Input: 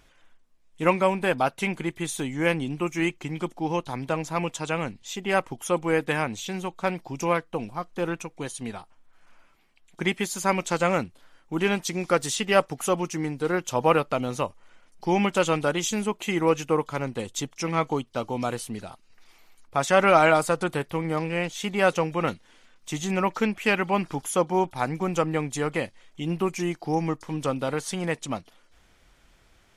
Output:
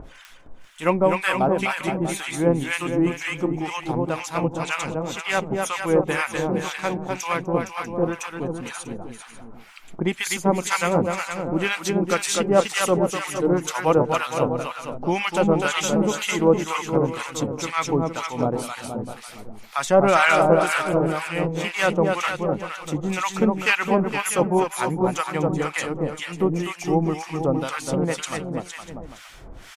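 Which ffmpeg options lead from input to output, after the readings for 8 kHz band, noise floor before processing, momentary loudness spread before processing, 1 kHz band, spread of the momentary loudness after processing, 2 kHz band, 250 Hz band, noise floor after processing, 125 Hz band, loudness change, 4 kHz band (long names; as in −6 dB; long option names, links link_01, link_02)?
+4.0 dB, −60 dBFS, 10 LU, +2.5 dB, 10 LU, +4.0 dB, +4.0 dB, −44 dBFS, +4.0 dB, +3.5 dB, +4.0 dB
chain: -filter_complex "[0:a]acompressor=mode=upward:threshold=-33dB:ratio=2.5,aecho=1:1:250|462.5|643.1|796.7|927.2:0.631|0.398|0.251|0.158|0.1,acrossover=split=970[link_01][link_02];[link_01]aeval=exprs='val(0)*(1-1/2+1/2*cos(2*PI*2*n/s))':channel_layout=same[link_03];[link_02]aeval=exprs='val(0)*(1-1/2-1/2*cos(2*PI*2*n/s))':channel_layout=same[link_04];[link_03][link_04]amix=inputs=2:normalize=0,volume=6dB"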